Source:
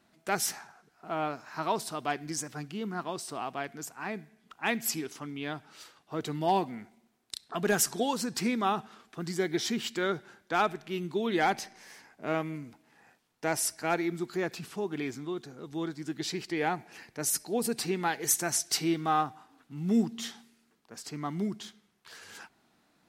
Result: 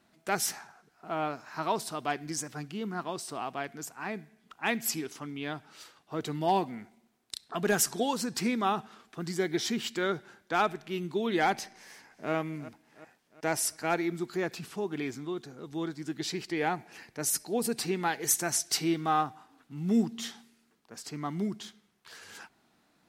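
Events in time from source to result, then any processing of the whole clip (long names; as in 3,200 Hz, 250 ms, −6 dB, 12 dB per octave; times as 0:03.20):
0:11.74–0:12.32: delay throw 360 ms, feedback 55%, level −14.5 dB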